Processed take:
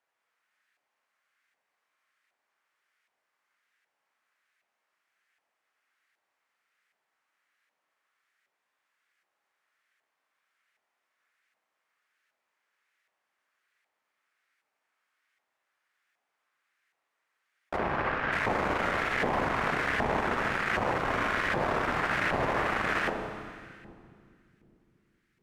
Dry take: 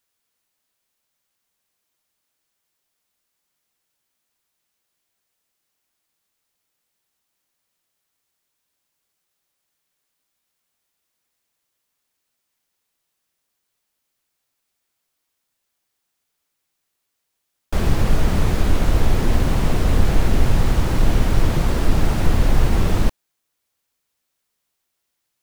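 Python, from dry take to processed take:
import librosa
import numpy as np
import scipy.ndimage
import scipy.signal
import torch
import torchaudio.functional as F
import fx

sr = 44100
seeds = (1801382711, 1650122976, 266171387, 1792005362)

p1 = fx.graphic_eq(x, sr, hz=(1000, 2000, 4000), db=(-5, 5, -3))
p2 = fx.echo_split(p1, sr, split_hz=330.0, low_ms=418, high_ms=89, feedback_pct=52, wet_db=-14.5)
p3 = 10.0 ** (-18.5 / 20.0) * (np.abs((p2 / 10.0 ** (-18.5 / 20.0) + 3.0) % 4.0 - 2.0) - 1.0)
p4 = p2 + (p3 * librosa.db_to_amplitude(-3.0))
p5 = fx.air_absorb(p4, sr, metres=200.0, at=(17.76, 18.31), fade=0.02)
p6 = fx.rev_schroeder(p5, sr, rt60_s=2.1, comb_ms=29, drr_db=3.5)
p7 = fx.filter_lfo_bandpass(p6, sr, shape='saw_up', hz=1.3, low_hz=810.0, high_hz=1700.0, q=1.7)
y = p7 * librosa.db_to_amplitude(3.0)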